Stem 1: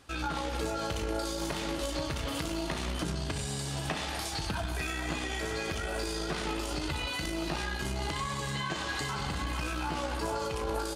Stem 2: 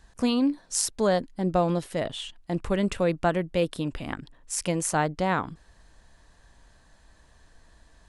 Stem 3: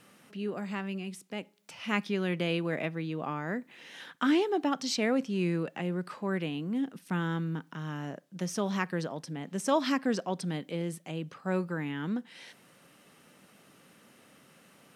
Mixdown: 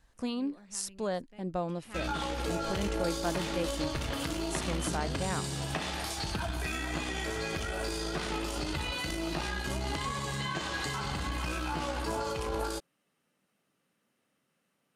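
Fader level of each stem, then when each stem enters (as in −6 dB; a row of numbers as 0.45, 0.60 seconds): −0.5, −10.0, −18.5 decibels; 1.85, 0.00, 0.00 seconds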